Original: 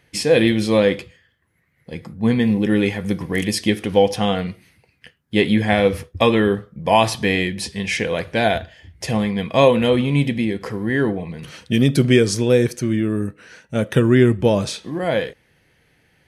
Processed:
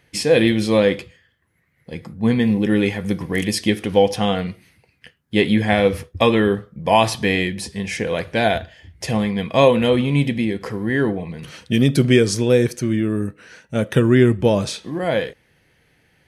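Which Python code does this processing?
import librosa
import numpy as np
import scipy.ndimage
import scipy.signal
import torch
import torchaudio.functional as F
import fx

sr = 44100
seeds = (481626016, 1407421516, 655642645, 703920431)

y = fx.dynamic_eq(x, sr, hz=3100.0, q=0.82, threshold_db=-37.0, ratio=4.0, max_db=-7, at=(7.53, 8.07))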